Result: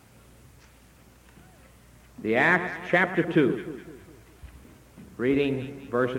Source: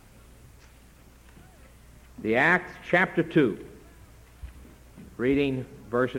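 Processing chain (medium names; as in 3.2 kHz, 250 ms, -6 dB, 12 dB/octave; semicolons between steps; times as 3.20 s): high-pass 75 Hz; on a send: echo whose repeats swap between lows and highs 102 ms, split 1.3 kHz, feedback 64%, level -9.5 dB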